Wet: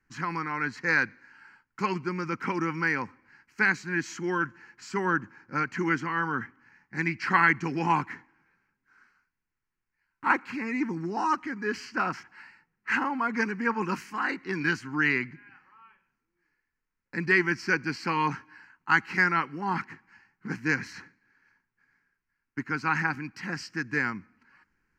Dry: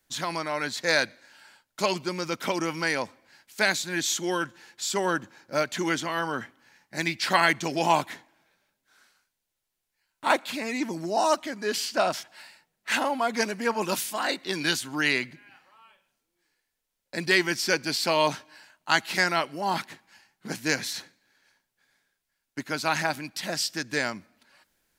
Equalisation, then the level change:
high-frequency loss of the air 210 metres
phaser with its sweep stopped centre 1,500 Hz, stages 4
+4.0 dB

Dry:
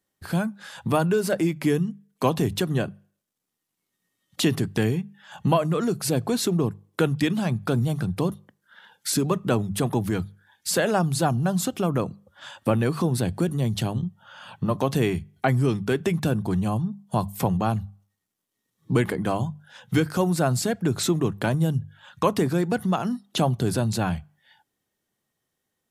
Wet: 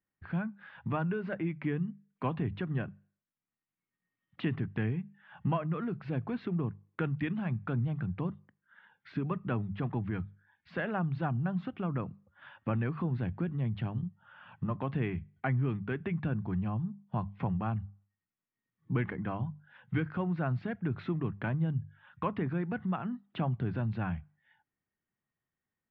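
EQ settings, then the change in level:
transistor ladder low-pass 3,000 Hz, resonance 25%
high-frequency loss of the air 340 metres
parametric band 500 Hz −8 dB 1.8 octaves
0.0 dB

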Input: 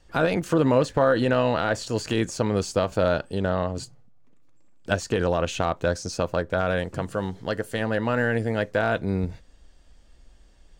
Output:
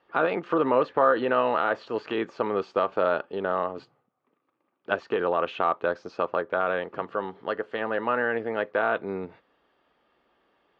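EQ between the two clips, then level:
loudspeaker in its box 300–3,200 Hz, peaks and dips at 400 Hz +5 dB, 850 Hz +4 dB, 1,200 Hz +9 dB
−3.0 dB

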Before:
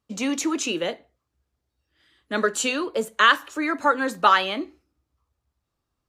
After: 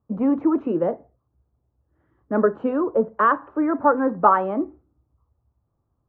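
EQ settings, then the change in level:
low-pass filter 1,100 Hz 24 dB per octave
parametric band 110 Hz +7 dB 1.2 octaves
+5.0 dB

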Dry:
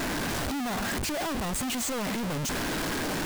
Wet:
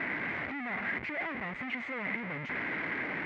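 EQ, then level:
high-pass filter 120 Hz 12 dB per octave
transistor ladder low-pass 2,200 Hz, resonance 80%
+3.5 dB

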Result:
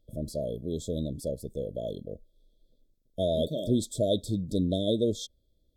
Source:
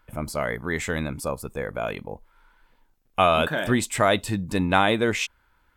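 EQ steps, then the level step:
linear-phase brick-wall band-stop 670–3,200 Hz
high-shelf EQ 4,700 Hz −7.5 dB
−3.0 dB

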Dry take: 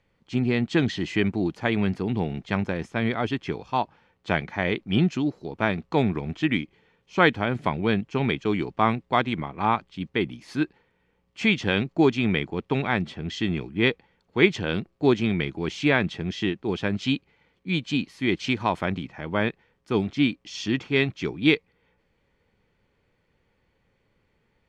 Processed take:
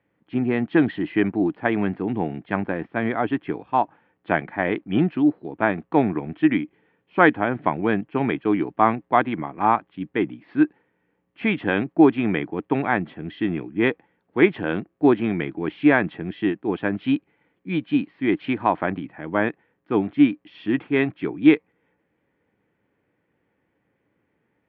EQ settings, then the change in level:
dynamic equaliser 920 Hz, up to +6 dB, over −35 dBFS, Q 0.75
high-frequency loss of the air 310 metres
loudspeaker in its box 120–3,500 Hz, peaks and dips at 300 Hz +9 dB, 710 Hz +3 dB, 1,700 Hz +5 dB
−1.0 dB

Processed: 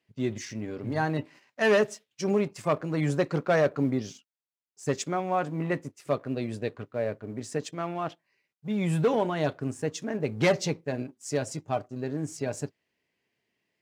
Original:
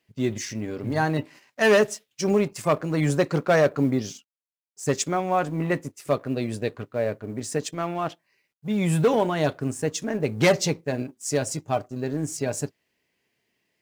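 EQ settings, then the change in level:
high-pass filter 52 Hz
high-shelf EQ 8,400 Hz −11.5 dB
−4.0 dB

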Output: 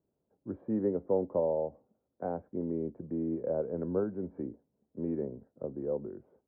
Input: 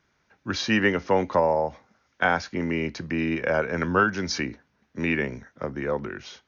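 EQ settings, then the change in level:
transistor ladder low-pass 660 Hz, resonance 30%
high-frequency loss of the air 300 metres
low-shelf EQ 96 Hz −10 dB
0.0 dB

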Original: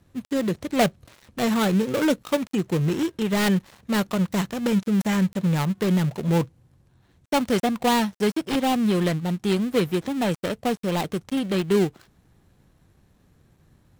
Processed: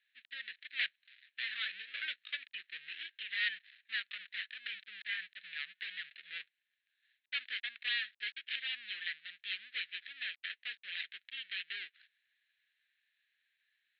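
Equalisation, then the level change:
elliptic band-pass filter 1,700–4,000 Hz, stop band 40 dB
high-frequency loss of the air 360 metres
spectral tilt +4 dB per octave
−3.5 dB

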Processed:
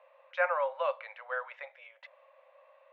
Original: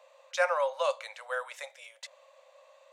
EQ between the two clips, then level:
low-pass filter 2,500 Hz 24 dB per octave
low-shelf EQ 430 Hz −7 dB
0.0 dB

